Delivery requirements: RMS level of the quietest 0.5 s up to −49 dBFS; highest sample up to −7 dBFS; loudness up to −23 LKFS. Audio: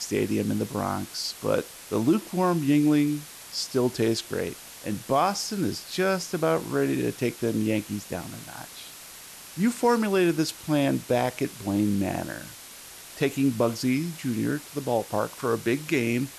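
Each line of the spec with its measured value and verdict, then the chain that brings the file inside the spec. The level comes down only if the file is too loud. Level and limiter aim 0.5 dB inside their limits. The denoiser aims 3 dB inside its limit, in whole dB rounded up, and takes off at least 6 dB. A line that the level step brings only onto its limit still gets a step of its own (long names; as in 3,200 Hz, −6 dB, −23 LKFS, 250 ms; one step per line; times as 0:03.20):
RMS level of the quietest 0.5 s −45 dBFS: out of spec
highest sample −11.0 dBFS: in spec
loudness −26.5 LKFS: in spec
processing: broadband denoise 7 dB, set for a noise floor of −45 dBFS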